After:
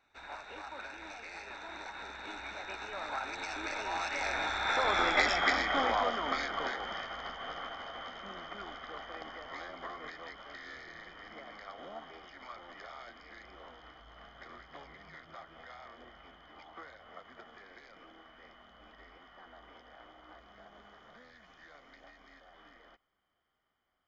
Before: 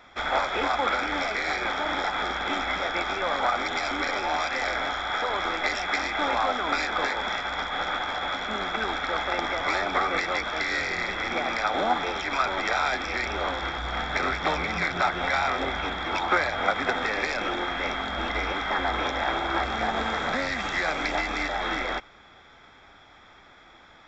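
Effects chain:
source passing by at 0:05.18, 31 m/s, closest 16 metres

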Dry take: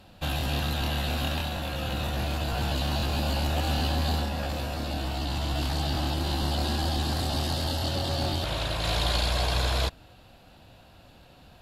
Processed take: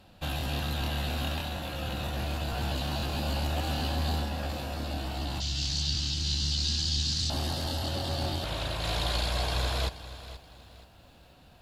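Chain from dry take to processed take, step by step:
0:05.40–0:07.30: drawn EQ curve 150 Hz 0 dB, 700 Hz −21 dB, 6,200 Hz +15 dB, 12,000 Hz −16 dB
feedback echo at a low word length 478 ms, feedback 35%, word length 9 bits, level −14.5 dB
level −3.5 dB

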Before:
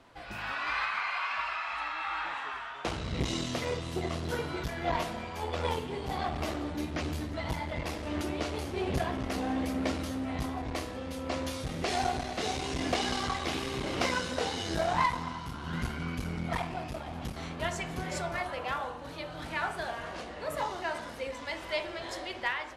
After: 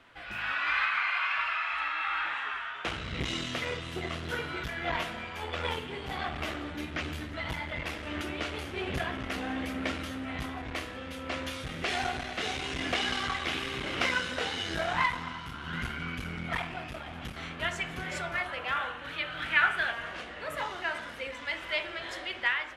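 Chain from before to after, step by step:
flat-topped bell 2,100 Hz +8.5 dB, from 0:18.75 +15 dB, from 0:19.91 +8.5 dB
level −3.5 dB

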